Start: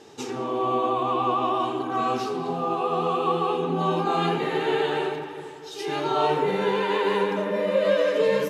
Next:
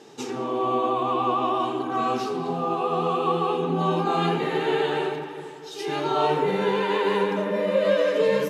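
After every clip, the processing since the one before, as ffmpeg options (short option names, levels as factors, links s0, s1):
-af "lowshelf=f=110:t=q:w=1.5:g=-8"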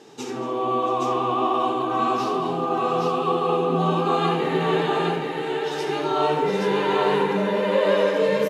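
-af "aecho=1:1:72|232|677|821:0.355|0.133|0.133|0.708"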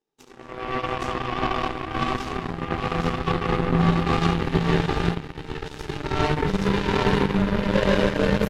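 -af "aeval=exprs='0.422*(cos(1*acos(clip(val(0)/0.422,-1,1)))-cos(1*PI/2))+0.00266*(cos(6*acos(clip(val(0)/0.422,-1,1)))-cos(6*PI/2))+0.0596*(cos(7*acos(clip(val(0)/0.422,-1,1)))-cos(7*PI/2))':c=same,asubboost=boost=5:cutoff=220"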